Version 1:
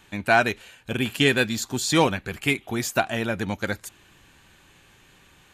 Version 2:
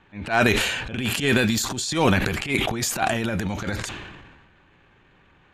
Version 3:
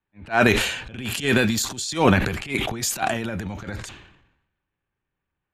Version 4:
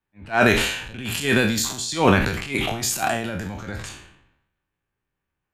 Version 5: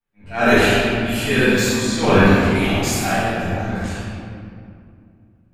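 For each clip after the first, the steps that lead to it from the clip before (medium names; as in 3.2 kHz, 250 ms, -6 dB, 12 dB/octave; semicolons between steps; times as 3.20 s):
transient shaper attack -12 dB, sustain +11 dB; level-controlled noise filter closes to 2 kHz, open at -21 dBFS; decay stretcher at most 39 dB/s
three bands expanded up and down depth 70%; trim -1.5 dB
spectral sustain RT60 0.45 s; trim -1 dB
reverberation RT60 2.4 s, pre-delay 4 ms, DRR -14.5 dB; trim -10.5 dB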